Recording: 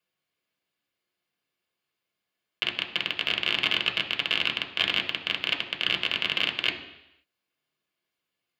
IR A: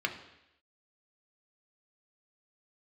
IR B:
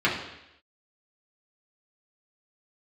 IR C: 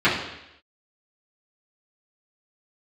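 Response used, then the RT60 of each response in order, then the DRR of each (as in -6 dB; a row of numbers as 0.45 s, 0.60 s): A; 0.85 s, 0.85 s, 0.85 s; 3.0 dB, -7.0 dB, -12.5 dB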